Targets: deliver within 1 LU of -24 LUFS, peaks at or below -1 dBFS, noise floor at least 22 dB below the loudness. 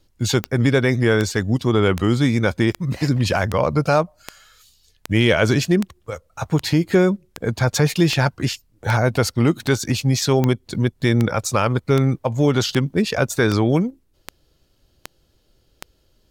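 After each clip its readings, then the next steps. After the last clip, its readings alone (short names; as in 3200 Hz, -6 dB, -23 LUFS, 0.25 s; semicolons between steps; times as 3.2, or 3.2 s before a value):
clicks 21; loudness -19.5 LUFS; peak -2.0 dBFS; loudness target -24.0 LUFS
-> de-click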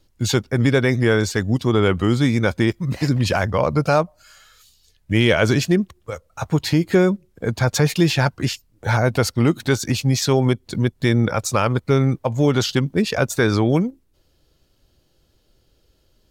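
clicks 0; loudness -19.5 LUFS; peak -4.0 dBFS; loudness target -24.0 LUFS
-> gain -4.5 dB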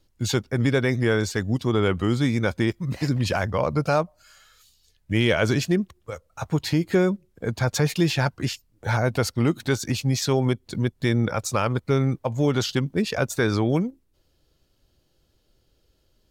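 loudness -24.0 LUFS; peak -8.5 dBFS; noise floor -67 dBFS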